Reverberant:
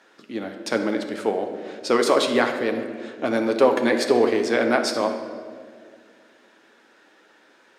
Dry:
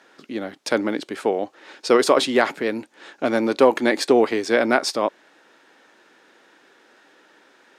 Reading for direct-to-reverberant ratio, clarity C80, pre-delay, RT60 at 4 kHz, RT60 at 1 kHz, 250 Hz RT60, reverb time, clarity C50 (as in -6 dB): 4.0 dB, 8.5 dB, 9 ms, 1.2 s, 1.6 s, 2.7 s, 2.0 s, 7.0 dB